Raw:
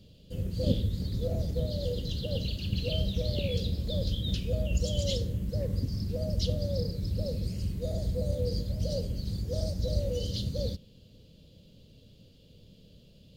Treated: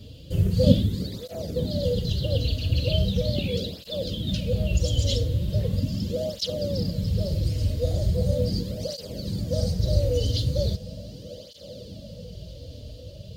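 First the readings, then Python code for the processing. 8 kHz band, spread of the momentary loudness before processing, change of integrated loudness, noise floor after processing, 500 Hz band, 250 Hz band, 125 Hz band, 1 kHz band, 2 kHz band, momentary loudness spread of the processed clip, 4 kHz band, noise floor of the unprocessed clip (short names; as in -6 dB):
+6.0 dB, 4 LU, +6.0 dB, -43 dBFS, +6.5 dB, +7.0 dB, +6.5 dB, n/a, +6.0 dB, 17 LU, +6.0 dB, -56 dBFS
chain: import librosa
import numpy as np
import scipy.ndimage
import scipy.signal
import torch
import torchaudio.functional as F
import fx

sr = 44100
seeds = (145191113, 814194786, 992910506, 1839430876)

p1 = fx.rider(x, sr, range_db=10, speed_s=2.0)
p2 = p1 + fx.echo_diffused(p1, sr, ms=1220, feedback_pct=64, wet_db=-14.5, dry=0)
p3 = fx.flanger_cancel(p2, sr, hz=0.39, depth_ms=5.8)
y = p3 * librosa.db_to_amplitude(8.5)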